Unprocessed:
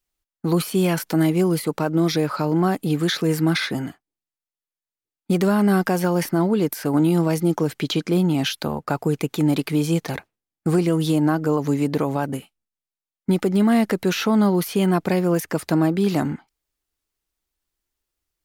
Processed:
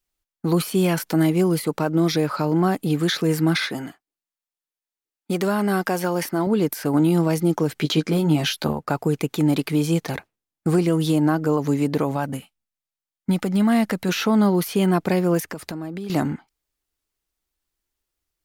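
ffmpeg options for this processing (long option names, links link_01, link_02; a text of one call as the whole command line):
ffmpeg -i in.wav -filter_complex "[0:a]asettb=1/sr,asplit=3[link_01][link_02][link_03];[link_01]atrim=end=3.674[link_04];[link_02]atrim=start=3.67:end=6.47,asetpts=PTS-STARTPTS,afade=type=in:duration=0.004:curve=qsin,afade=type=out:start_time=2.796:duration=0.004:curve=qsin,lowshelf=frequency=180:gain=-11.5[link_05];[link_03]atrim=start=6.466[link_06];[link_04][link_05]acrossfade=duration=0.004:curve1=hsin:curve2=qsin[link_07];[link_07][link_06]acrossfade=duration=0.004:curve1=qsin:curve2=hsin,asettb=1/sr,asplit=3[link_08][link_09][link_10];[link_08]atrim=end=7.754[link_11];[link_09]atrim=start=7.75:end=8.73,asetpts=PTS-STARTPTS,afade=type=in:duration=0.004:curve=qsin,afade=type=out:start_time=0.976:duration=0.004:curve=qsin,asplit=2[link_12][link_13];[link_13]adelay=13,volume=-4.5dB[link_14];[link_12][link_14]amix=inputs=2:normalize=0,atrim=end_sample=43218[link_15];[link_10]atrim=start=8.726[link_16];[link_11][link_15]acrossfade=duration=0.004:curve1=hsin:curve2=qsin[link_17];[link_17][link_16]acrossfade=duration=0.004:curve1=qsin:curve2=hsin,asettb=1/sr,asplit=3[link_18][link_19][link_20];[link_18]atrim=end=12.114[link_21];[link_19]atrim=start=12.11:end=14.09,asetpts=PTS-STARTPTS,afade=type=in:duration=0.004:curve=qsin,afade=type=out:start_time=1.976:duration=0.004:curve=qsin,equalizer=frequency=380:width=2.7:gain=-8.5[link_22];[link_20]atrim=start=14.086[link_23];[link_21][link_22]acrossfade=duration=0.004:curve1=hsin:curve2=qsin[link_24];[link_24][link_23]acrossfade=duration=0.004:curve1=qsin:curve2=hsin,asettb=1/sr,asplit=3[link_25][link_26][link_27];[link_25]atrim=end=15.414[link_28];[link_26]atrim=start=15.41:end=16.1,asetpts=PTS-STARTPTS,afade=type=in:duration=0.004:curve=qsin,afade=type=out:start_time=0.686:duration=0.004:curve=qsin,acompressor=threshold=-27dB:ratio=12:attack=3.2:release=140:knee=1:detection=peak[link_29];[link_27]atrim=start=16.096[link_30];[link_28][link_29]acrossfade=duration=0.004:curve1=hsin:curve2=qsin[link_31];[link_31][link_30]acrossfade=duration=0.004:curve1=qsin:curve2=hsin" out.wav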